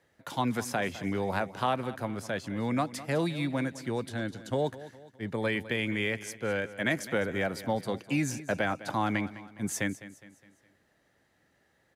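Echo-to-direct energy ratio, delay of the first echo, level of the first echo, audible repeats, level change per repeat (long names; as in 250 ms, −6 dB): −15.0 dB, 206 ms, −16.0 dB, 3, −7.0 dB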